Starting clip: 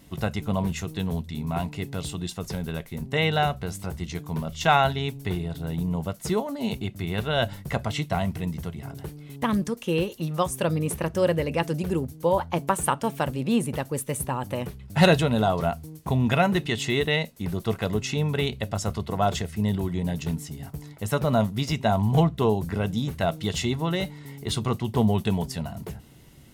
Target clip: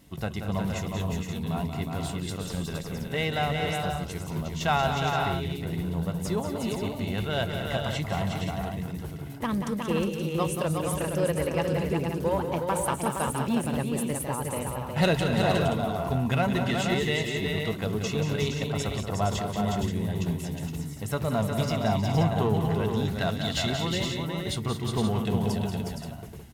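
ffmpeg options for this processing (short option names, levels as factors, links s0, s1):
-filter_complex "[0:a]asettb=1/sr,asplit=3[s0][s1][s2];[s0]atrim=end=23.054[s3];[s1]atrim=start=23.05:end=23.7,asetpts=PTS-STARTPTS,afade=t=in:d=0.004:c=qsin,afade=t=out:st=0.646:d=0.004:c=qsin,equalizer=f=400:t=o:w=0.67:g=-6,equalizer=f=1600:t=o:w=0.67:g=5,equalizer=f=4000:t=o:w=0.67:g=8[s4];[s2]atrim=start=23.696[s5];[s3][s4]acrossfade=d=0.004:c1=hsin:c2=qsin[s6];[s6][s5]acrossfade=d=0.004:c1=qsin:c2=hsin,asplit=2[s7][s8];[s8]asoftclip=type=hard:threshold=0.0708,volume=0.562[s9];[s7][s9]amix=inputs=2:normalize=0,aecho=1:1:183|222|362|466|526:0.398|0.251|0.562|0.473|0.355,volume=0.422"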